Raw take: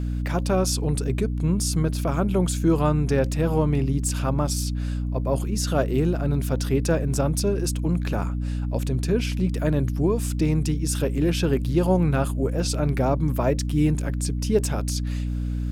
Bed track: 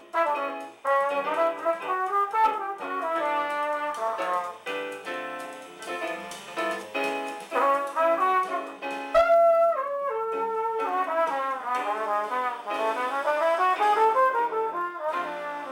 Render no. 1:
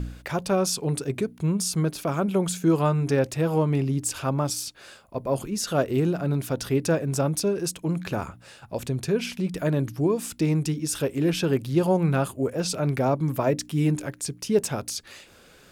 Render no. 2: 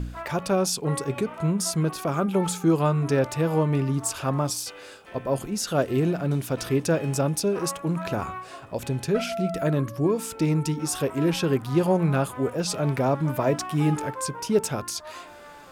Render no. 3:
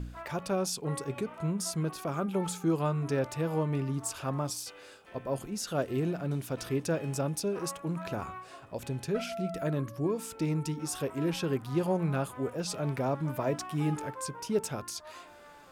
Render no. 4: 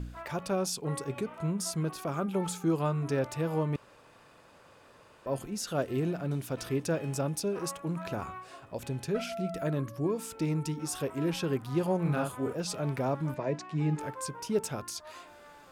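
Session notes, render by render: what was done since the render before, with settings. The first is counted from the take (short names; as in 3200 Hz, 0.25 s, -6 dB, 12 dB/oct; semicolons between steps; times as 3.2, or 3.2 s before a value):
de-hum 60 Hz, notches 5
add bed track -13 dB
gain -7.5 dB
3.76–5.26 room tone; 12.01–12.53 doubler 41 ms -4 dB; 13.34–13.99 speaker cabinet 160–6300 Hz, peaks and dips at 160 Hz +7 dB, 240 Hz -5 dB, 750 Hz -6 dB, 1300 Hz -10 dB, 3200 Hz -8 dB, 5500 Hz -6 dB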